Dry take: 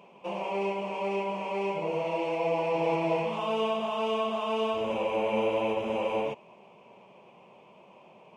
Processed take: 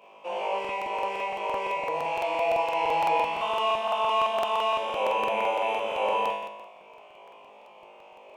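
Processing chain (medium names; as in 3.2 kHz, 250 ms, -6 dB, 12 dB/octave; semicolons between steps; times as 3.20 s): high-pass 470 Hz 12 dB/octave; peaking EQ 5.2 kHz -3 dB; flutter echo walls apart 3.3 m, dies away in 0.94 s; crackling interface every 0.17 s, samples 2048, repeat, from 0.60 s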